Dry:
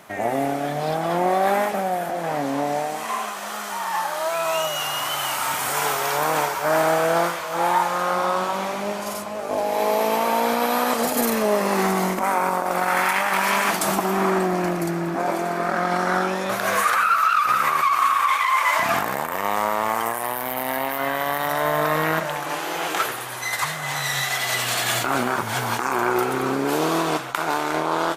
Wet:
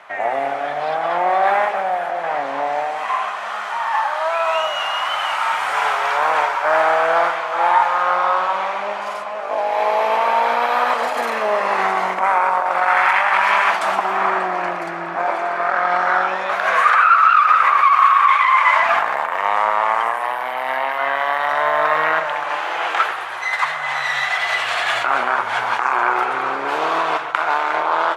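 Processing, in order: low-pass 8.5 kHz 12 dB/octave; three-band isolator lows -22 dB, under 600 Hz, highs -18 dB, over 3.1 kHz; bucket-brigade echo 123 ms, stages 1024, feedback 65%, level -13.5 dB; trim +7 dB

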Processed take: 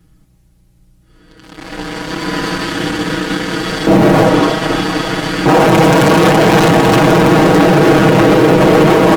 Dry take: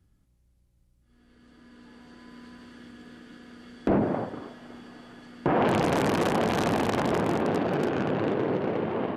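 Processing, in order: in parallel at -11 dB: fuzz box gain 41 dB, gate -50 dBFS; on the sum: comb 6.3 ms, depth 93%; loudness maximiser +16 dB; trim -1 dB

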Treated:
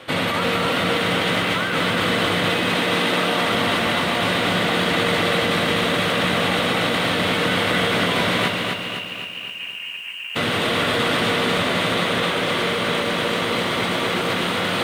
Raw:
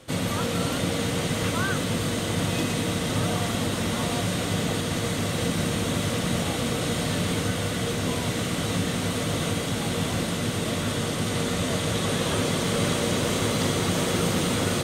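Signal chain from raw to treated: distance through air 490 m; in parallel at -1.5 dB: peak limiter -22 dBFS, peak gain reduction 7 dB; 2.75–3.45 s: on the sum: high-pass 200 Hz 12 dB/octave; 8.49–10.35 s: frequency inversion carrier 3 kHz; tilt EQ +4.5 dB/octave; compressor with a negative ratio -30 dBFS, ratio -1; bit-crushed delay 255 ms, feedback 55%, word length 9-bit, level -3.5 dB; trim +5 dB

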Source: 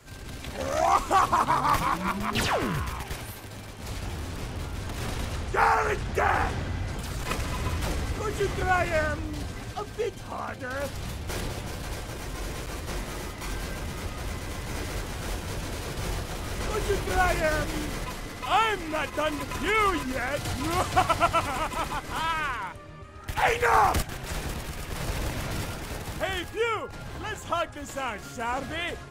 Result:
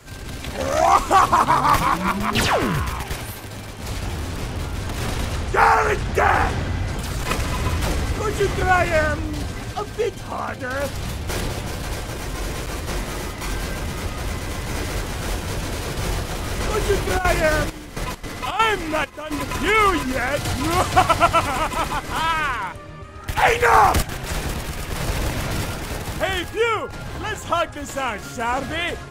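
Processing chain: 17.17–19.30 s: trance gate "xx...xx.xxx.xxx" 167 bpm -12 dB; trim +7 dB

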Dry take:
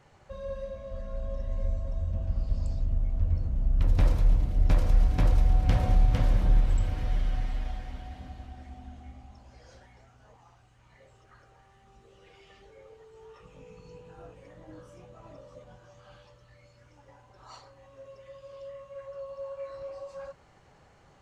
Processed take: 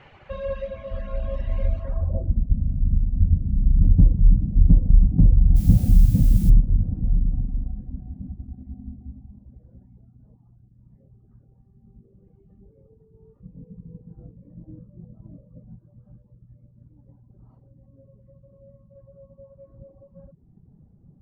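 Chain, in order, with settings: reverb removal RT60 0.84 s; low-pass sweep 2.7 kHz -> 200 Hz, 1.79–2.41 s; 5.55–6.49 s: added noise blue -52 dBFS; trim +8.5 dB

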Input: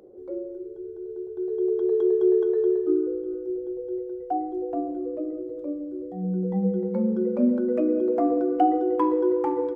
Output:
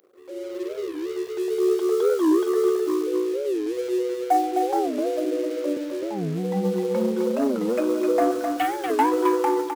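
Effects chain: waveshaping leveller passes 1; 4.99–5.77 s: steep high-pass 230 Hz 36 dB/octave; 8.31–8.92 s: peaking EQ 460 Hz -12.5 dB 1.6 oct; level rider gain up to 16 dB; tilt EQ +4.5 dB/octave; delay 258 ms -5.5 dB; warped record 45 rpm, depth 250 cents; trim -6.5 dB

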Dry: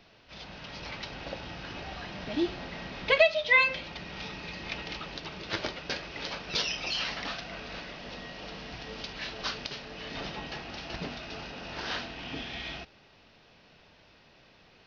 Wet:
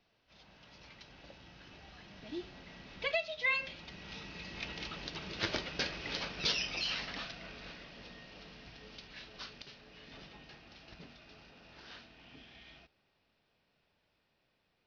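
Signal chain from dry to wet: Doppler pass-by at 5.82 s, 7 m/s, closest 6.6 m; dynamic bell 780 Hz, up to -4 dB, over -60 dBFS, Q 0.74

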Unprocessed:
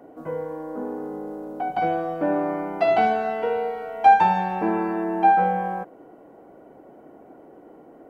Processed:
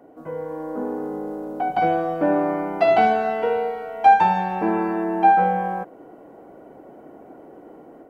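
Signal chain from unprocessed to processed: level rider gain up to 6 dB; trim -2.5 dB

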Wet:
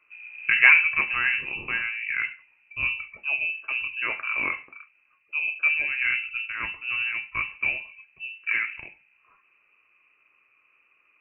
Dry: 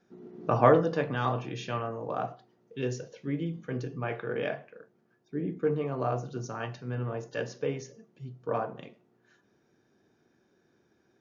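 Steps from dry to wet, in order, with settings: frequency inversion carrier 2.8 kHz; trim +4.5 dB

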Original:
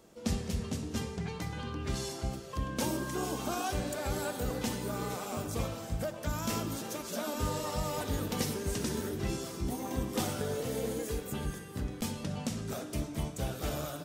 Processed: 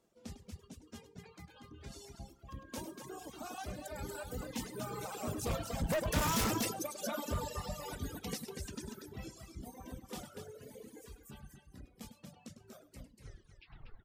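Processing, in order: tape stop on the ending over 1.20 s; Doppler pass-by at 6.26 s, 6 m/s, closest 1.5 m; de-hum 56.75 Hz, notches 2; reverb removal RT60 1.4 s; loudspeakers at several distances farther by 35 m -7 dB, 82 m -5 dB; reverb removal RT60 1.8 s; in parallel at -10 dB: sine folder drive 15 dB, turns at -24.5 dBFS; on the sum: trim +1.5 dB

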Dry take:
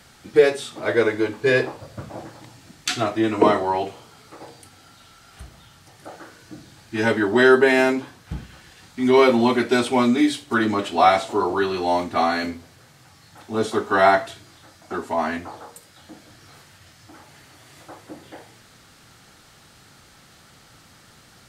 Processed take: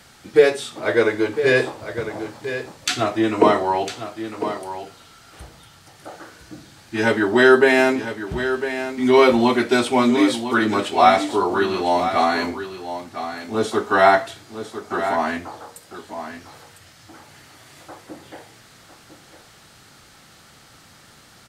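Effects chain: bass shelf 210 Hz -3 dB; on a send: delay 1003 ms -10.5 dB; on the sum: trim +2 dB

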